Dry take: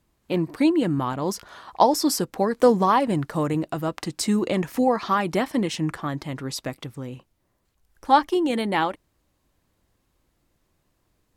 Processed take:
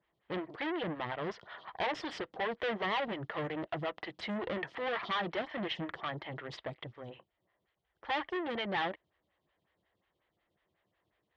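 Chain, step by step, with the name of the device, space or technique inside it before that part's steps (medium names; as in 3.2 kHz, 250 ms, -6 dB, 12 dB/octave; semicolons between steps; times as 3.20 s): vibe pedal into a guitar amplifier (lamp-driven phase shifter 5.5 Hz; valve stage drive 30 dB, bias 0.6; cabinet simulation 79–4100 Hz, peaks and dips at 260 Hz -10 dB, 680 Hz +3 dB, 1.9 kHz +10 dB, 3.2 kHz +9 dB); trim -2 dB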